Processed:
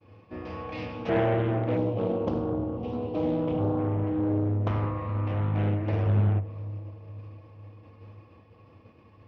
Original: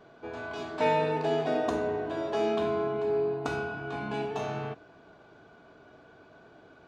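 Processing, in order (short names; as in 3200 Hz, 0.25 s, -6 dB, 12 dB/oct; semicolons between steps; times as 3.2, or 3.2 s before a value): speed mistake 45 rpm record played at 33 rpm; thirty-one-band EQ 100 Hz +12 dB, 2500 Hz +9 dB, 5000 Hz +7 dB; treble ducked by the level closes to 1900 Hz, closed at -27 dBFS; bell 93 Hz +7 dB 0.99 oct; expander -47 dBFS; on a send: dark delay 0.498 s, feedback 52%, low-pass 780 Hz, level -16 dB; on the sum: spectral gain 1.77–3.79, 1100–2700 Hz -15 dB; Doppler distortion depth 0.75 ms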